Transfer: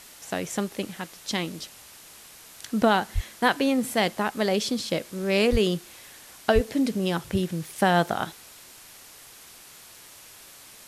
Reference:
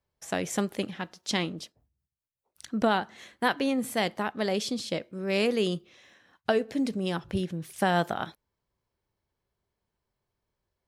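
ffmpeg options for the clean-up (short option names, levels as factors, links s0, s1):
-filter_complex "[0:a]asplit=3[s0][s1][s2];[s0]afade=t=out:st=3.14:d=0.02[s3];[s1]highpass=f=140:w=0.5412,highpass=f=140:w=1.3066,afade=t=in:st=3.14:d=0.02,afade=t=out:st=3.26:d=0.02[s4];[s2]afade=t=in:st=3.26:d=0.02[s5];[s3][s4][s5]amix=inputs=3:normalize=0,asplit=3[s6][s7][s8];[s6]afade=t=out:st=5.51:d=0.02[s9];[s7]highpass=f=140:w=0.5412,highpass=f=140:w=1.3066,afade=t=in:st=5.51:d=0.02,afade=t=out:st=5.63:d=0.02[s10];[s8]afade=t=in:st=5.63:d=0.02[s11];[s9][s10][s11]amix=inputs=3:normalize=0,asplit=3[s12][s13][s14];[s12]afade=t=out:st=6.54:d=0.02[s15];[s13]highpass=f=140:w=0.5412,highpass=f=140:w=1.3066,afade=t=in:st=6.54:d=0.02,afade=t=out:st=6.66:d=0.02[s16];[s14]afade=t=in:st=6.66:d=0.02[s17];[s15][s16][s17]amix=inputs=3:normalize=0,afwtdn=0.005,asetnsamples=n=441:p=0,asendcmd='1.59 volume volume -4dB',volume=1"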